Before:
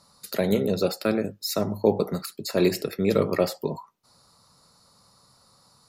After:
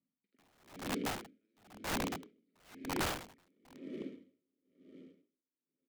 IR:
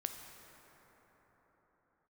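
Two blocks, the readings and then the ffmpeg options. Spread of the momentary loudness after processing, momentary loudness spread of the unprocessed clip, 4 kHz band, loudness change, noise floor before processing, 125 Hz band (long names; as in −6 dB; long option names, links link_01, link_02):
22 LU, 9 LU, −10.5 dB, −14.5 dB, −61 dBFS, −18.0 dB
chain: -filter_complex "[0:a]agate=range=-14dB:threshold=-46dB:ratio=16:detection=peak,acrossover=split=790[link_01][link_02];[link_02]adynamicsmooth=sensitivity=1.5:basefreq=1500[link_03];[link_01][link_03]amix=inputs=2:normalize=0,lowpass=4000,asplit=2[link_04][link_05];[1:a]atrim=start_sample=2205,adelay=47[link_06];[link_05][link_06]afir=irnorm=-1:irlink=0,volume=-1dB[link_07];[link_04][link_07]amix=inputs=2:normalize=0,acrusher=bits=4:mode=log:mix=0:aa=0.000001,asplit=3[link_08][link_09][link_10];[link_08]bandpass=frequency=270:width_type=q:width=8,volume=0dB[link_11];[link_09]bandpass=frequency=2290:width_type=q:width=8,volume=-6dB[link_12];[link_10]bandpass=frequency=3010:width_type=q:width=8,volume=-9dB[link_13];[link_11][link_12][link_13]amix=inputs=3:normalize=0,asplit=2[link_14][link_15];[link_15]adelay=360,highpass=300,lowpass=3400,asoftclip=type=hard:threshold=-29.5dB,volume=-8dB[link_16];[link_14][link_16]amix=inputs=2:normalize=0,aeval=exprs='(mod(42.2*val(0)+1,2)-1)/42.2':channel_layout=same,aeval=exprs='val(0)*pow(10,-39*(0.5-0.5*cos(2*PI*1*n/s))/20)':channel_layout=same,volume=4.5dB"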